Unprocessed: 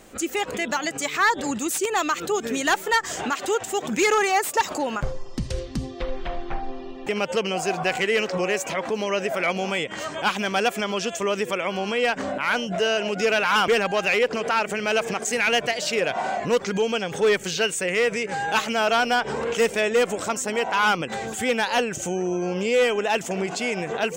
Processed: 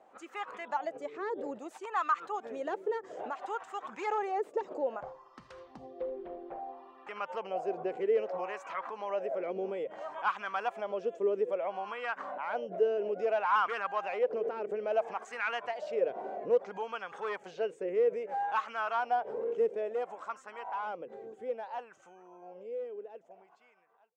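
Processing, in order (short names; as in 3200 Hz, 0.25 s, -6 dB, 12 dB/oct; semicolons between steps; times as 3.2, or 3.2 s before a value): ending faded out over 6.52 s; wah 0.6 Hz 410–1200 Hz, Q 3.4; notches 50/100/150 Hz; gain -2 dB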